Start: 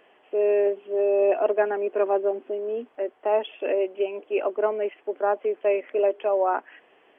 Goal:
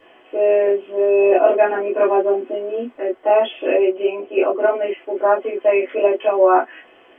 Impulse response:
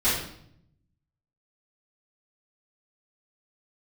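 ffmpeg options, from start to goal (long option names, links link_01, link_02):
-filter_complex "[0:a]asettb=1/sr,asplit=3[link_01][link_02][link_03];[link_01]atrim=end=3.894[link_04];[link_02]atrim=start=3.89:end=4.55,asetpts=PTS-STARTPTS,afade=type=in:duration=0.004:curve=qsin,afade=type=out:start_time=0.656:duration=0.004:curve=qsin,lowpass=frequency=2400:poles=1[link_05];[link_03]atrim=start=4.546[link_06];[link_04][link_05]acrossfade=duration=0.004:curve1=hsin:curve2=qsin[link_07];[link_07][link_06]acrossfade=duration=0.004:curve1=qsin:curve2=hsin[link_08];[1:a]atrim=start_sample=2205,atrim=end_sample=3528,asetrate=61740,aresample=44100[link_09];[link_08][link_09]afir=irnorm=-1:irlink=0,volume=-1dB"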